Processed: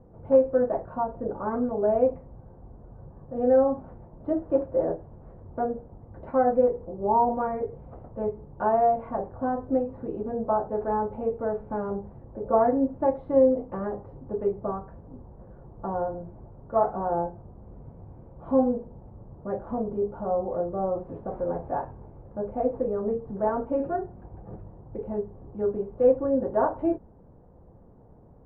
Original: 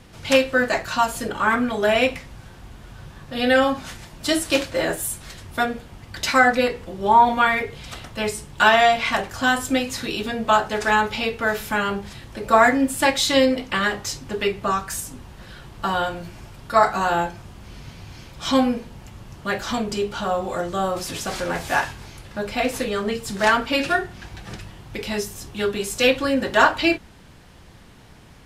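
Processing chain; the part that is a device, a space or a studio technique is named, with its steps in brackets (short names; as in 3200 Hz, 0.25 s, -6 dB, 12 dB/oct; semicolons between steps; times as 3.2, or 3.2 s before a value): under water (LPF 870 Hz 24 dB/oct; bell 490 Hz +6 dB 0.46 oct); gain -5 dB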